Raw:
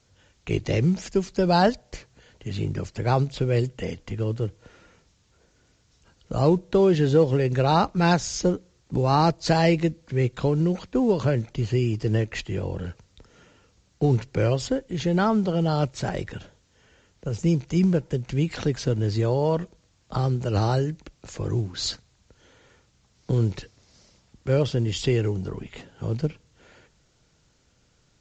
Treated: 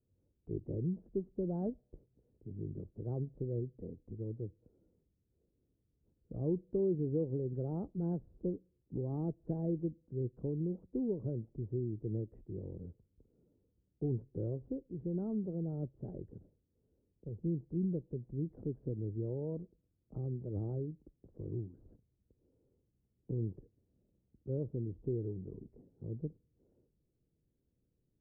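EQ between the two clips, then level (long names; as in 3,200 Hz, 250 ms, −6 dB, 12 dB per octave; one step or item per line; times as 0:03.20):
transistor ladder low-pass 480 Hz, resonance 30%
−8.5 dB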